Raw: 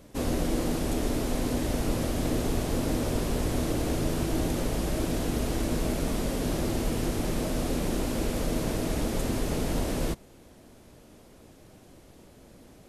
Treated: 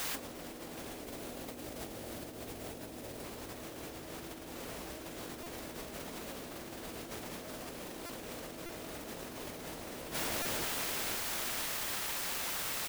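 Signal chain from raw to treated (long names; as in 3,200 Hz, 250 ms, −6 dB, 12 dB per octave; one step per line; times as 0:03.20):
0:01.00–0:03.24: flat-topped bell 2,700 Hz −15.5 dB 2.8 octaves
repeating echo 507 ms, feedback 53%, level −10.5 dB
bit-depth reduction 6 bits, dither triangular
high-pass filter 92 Hz 6 dB per octave
high-shelf EQ 8,900 Hz +9.5 dB
mid-hump overdrive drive 14 dB, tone 2,200 Hz, clips at −17.5 dBFS
compressor whose output falls as the input rises −35 dBFS, ratio −0.5
buffer that repeats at 0:05.43/0:08.06/0:08.66/0:10.42, samples 128, times 10
level −4.5 dB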